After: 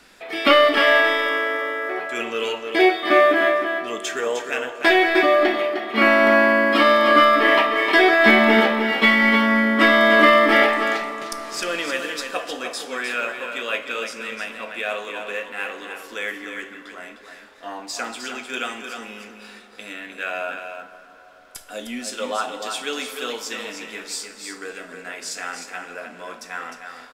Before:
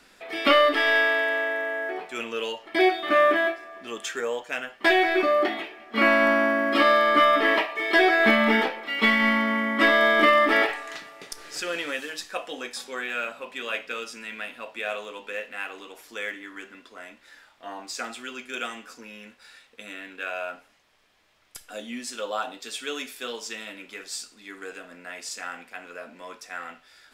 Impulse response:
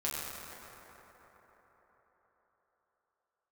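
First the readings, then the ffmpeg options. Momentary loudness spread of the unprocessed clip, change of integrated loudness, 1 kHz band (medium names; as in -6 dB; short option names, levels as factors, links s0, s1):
21 LU, +5.0 dB, +4.5 dB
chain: -filter_complex "[0:a]aecho=1:1:306:0.447,asplit=2[s0][s1];[1:a]atrim=start_sample=2205,asetrate=36162,aresample=44100[s2];[s1][s2]afir=irnorm=-1:irlink=0,volume=0.158[s3];[s0][s3]amix=inputs=2:normalize=0,volume=1.41"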